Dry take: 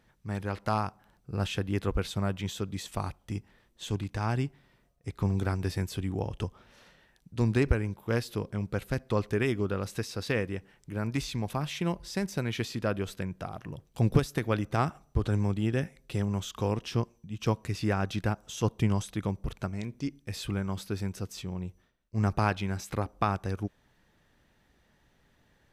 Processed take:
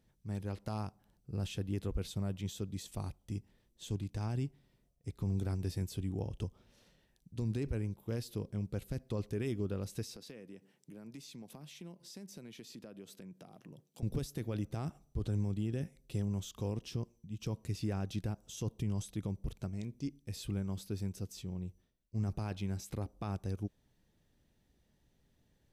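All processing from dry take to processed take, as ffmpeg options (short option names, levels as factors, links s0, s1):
-filter_complex "[0:a]asettb=1/sr,asplit=3[s0][s1][s2];[s0]atrim=end=10.164[s3];[s1]atrim=start=10.16:end=14.03,asetpts=PTS-STARTPTS,afade=t=in:d=0.004:c=qsin,afade=t=out:st=3.866:d=0.004:c=qsin,highpass=f=160:w=0.5412,highpass=f=160:w=1.3066,acompressor=threshold=0.00794:ratio=3:attack=3.2:release=140:knee=1:detection=peak[s4];[s2]atrim=start=14.026[s5];[s3][s4]acrossfade=d=0.004:c1=hsin:c2=qsin[s6];[s6][s5]acrossfade=d=0.004:c1=qsin:c2=hsin,equalizer=f=1400:w=0.58:g=-12,alimiter=limit=0.0708:level=0:latency=1:release=21,volume=0.631"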